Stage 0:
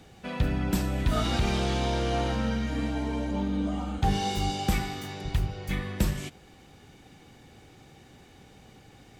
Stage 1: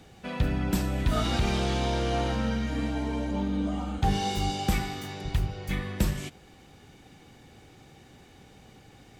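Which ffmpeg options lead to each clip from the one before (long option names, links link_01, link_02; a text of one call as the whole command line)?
ffmpeg -i in.wav -af anull out.wav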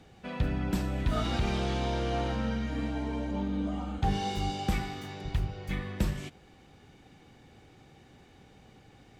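ffmpeg -i in.wav -af "highshelf=frequency=6400:gain=-8.5,volume=-3dB" out.wav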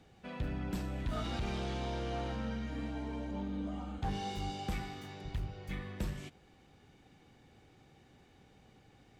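ffmpeg -i in.wav -af "asoftclip=type=tanh:threshold=-21.5dB,volume=-6dB" out.wav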